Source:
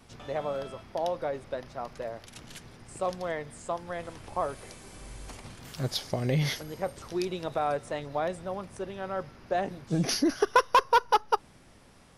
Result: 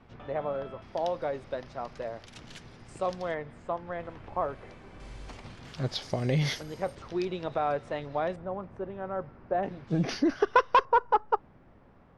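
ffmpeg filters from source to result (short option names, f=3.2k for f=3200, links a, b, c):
-af "asetnsamples=n=441:p=0,asendcmd='0.82 lowpass f 5800;3.34 lowpass f 2300;5 lowpass f 4500;6.02 lowpass f 7700;6.95 lowpass f 3700;8.36 lowpass f 1400;9.63 lowpass f 3100;10.85 lowpass f 1400',lowpass=2.2k"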